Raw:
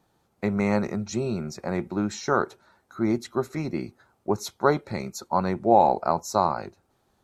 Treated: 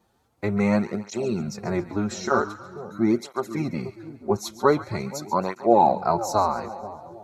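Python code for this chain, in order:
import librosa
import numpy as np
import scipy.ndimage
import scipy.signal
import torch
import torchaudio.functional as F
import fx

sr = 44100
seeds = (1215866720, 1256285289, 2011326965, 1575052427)

y = fx.transient(x, sr, attack_db=3, sustain_db=-9, at=(0.81, 1.34), fade=0.02)
y = fx.echo_split(y, sr, split_hz=880.0, low_ms=480, high_ms=137, feedback_pct=52, wet_db=-14.5)
y = fx.flanger_cancel(y, sr, hz=0.45, depth_ms=7.3)
y = y * 10.0 ** (4.0 / 20.0)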